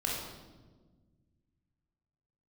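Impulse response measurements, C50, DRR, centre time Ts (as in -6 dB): 0.0 dB, -3.5 dB, 72 ms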